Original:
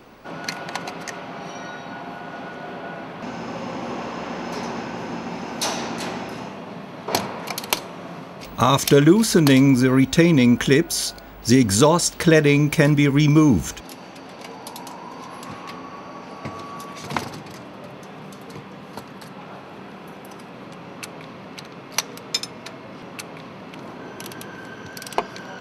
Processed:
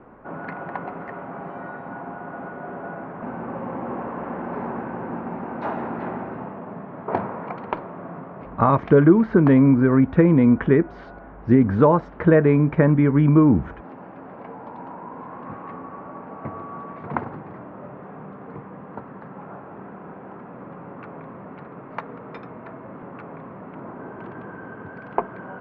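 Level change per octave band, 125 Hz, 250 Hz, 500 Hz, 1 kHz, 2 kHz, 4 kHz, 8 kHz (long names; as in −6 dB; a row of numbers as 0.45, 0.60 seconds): 0.0 dB, 0.0 dB, 0.0 dB, 0.0 dB, −6.0 dB, below −25 dB, below −40 dB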